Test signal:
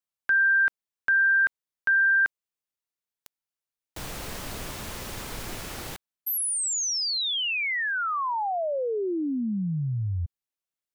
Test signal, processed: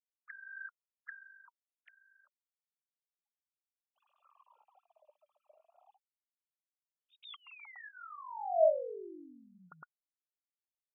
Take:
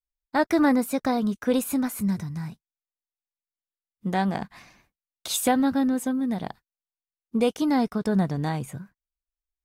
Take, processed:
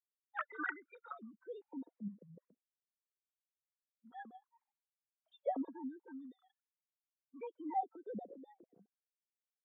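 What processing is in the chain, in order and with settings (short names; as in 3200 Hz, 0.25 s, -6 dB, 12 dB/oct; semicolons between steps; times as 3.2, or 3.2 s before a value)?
sine-wave speech; bell 680 Hz -6.5 dB 1.4 oct; spectral noise reduction 23 dB; wah 0.33 Hz 580–1500 Hz, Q 14; gain +7.5 dB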